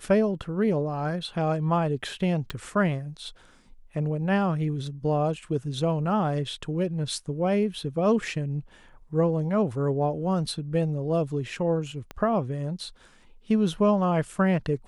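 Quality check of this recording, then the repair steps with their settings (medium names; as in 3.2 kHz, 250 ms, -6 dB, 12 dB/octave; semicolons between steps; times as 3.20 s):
2.50 s: pop
12.11 s: pop -22 dBFS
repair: de-click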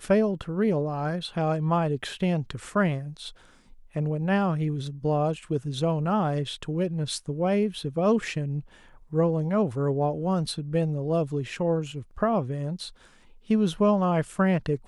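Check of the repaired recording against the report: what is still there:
12.11 s: pop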